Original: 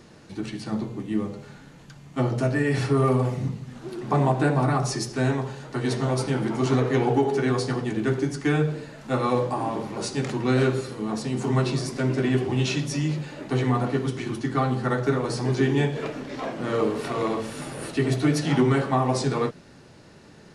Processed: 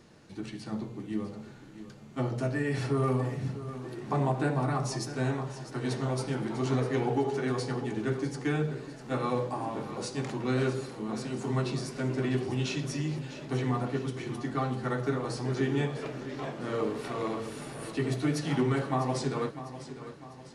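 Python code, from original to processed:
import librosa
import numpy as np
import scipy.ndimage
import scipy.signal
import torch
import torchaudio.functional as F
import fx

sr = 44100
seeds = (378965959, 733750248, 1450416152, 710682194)

y = fx.echo_feedback(x, sr, ms=650, feedback_pct=47, wet_db=-13)
y = y * librosa.db_to_amplitude(-7.0)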